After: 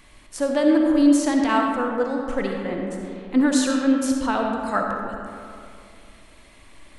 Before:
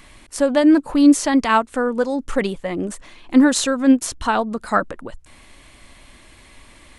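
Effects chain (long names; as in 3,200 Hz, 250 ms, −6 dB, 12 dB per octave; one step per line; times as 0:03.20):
0:01.61–0:03.41: high-shelf EQ 6,300 Hz −8.5 dB
comb and all-pass reverb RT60 2.5 s, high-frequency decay 0.45×, pre-delay 20 ms, DRR 1 dB
level −6 dB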